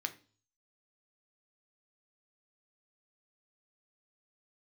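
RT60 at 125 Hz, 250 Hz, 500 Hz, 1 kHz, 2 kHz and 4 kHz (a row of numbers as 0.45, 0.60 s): 0.70, 0.50, 0.40, 0.35, 0.35, 0.45 s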